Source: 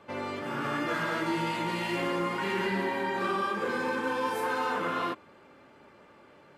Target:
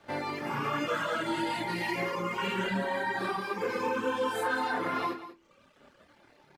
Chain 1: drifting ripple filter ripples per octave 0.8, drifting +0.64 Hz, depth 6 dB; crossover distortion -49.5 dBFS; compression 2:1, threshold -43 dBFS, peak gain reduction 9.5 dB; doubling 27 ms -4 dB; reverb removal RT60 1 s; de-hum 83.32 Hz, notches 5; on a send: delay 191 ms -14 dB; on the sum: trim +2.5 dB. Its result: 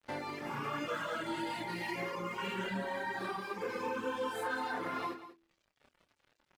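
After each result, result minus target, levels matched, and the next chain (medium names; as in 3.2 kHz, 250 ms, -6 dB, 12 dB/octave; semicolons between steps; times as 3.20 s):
compression: peak gain reduction +6 dB; crossover distortion: distortion +7 dB
drifting ripple filter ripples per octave 0.8, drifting +0.64 Hz, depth 6 dB; crossover distortion -49.5 dBFS; compression 2:1, threshold -31 dBFS, peak gain reduction 3.5 dB; doubling 27 ms -4 dB; reverb removal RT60 1 s; de-hum 83.32 Hz, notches 5; on a send: delay 191 ms -14 dB; on the sum: trim +2.5 dB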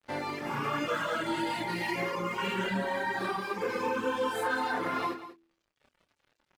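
crossover distortion: distortion +7 dB
drifting ripple filter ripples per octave 0.8, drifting +0.64 Hz, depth 6 dB; crossover distortion -57.5 dBFS; compression 2:1, threshold -31 dBFS, peak gain reduction 3.5 dB; doubling 27 ms -4 dB; reverb removal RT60 1 s; de-hum 83.32 Hz, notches 5; on a send: delay 191 ms -14 dB; on the sum: trim +2.5 dB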